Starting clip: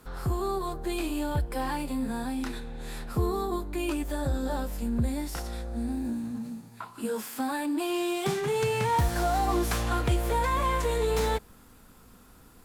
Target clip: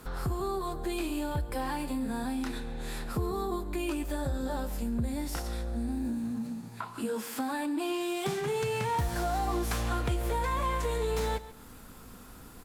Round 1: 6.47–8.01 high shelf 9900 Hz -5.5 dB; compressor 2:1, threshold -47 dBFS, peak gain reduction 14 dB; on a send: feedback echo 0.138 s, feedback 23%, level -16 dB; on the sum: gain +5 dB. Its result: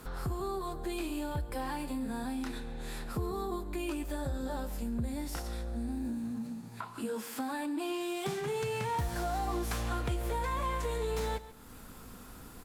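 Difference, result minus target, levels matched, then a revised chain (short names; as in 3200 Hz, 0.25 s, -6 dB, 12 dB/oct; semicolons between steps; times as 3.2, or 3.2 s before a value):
compressor: peak gain reduction +3.5 dB
6.47–8.01 high shelf 9900 Hz -5.5 dB; compressor 2:1, threshold -40.5 dBFS, peak gain reduction 11 dB; on a send: feedback echo 0.138 s, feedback 23%, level -16 dB; on the sum: gain +5 dB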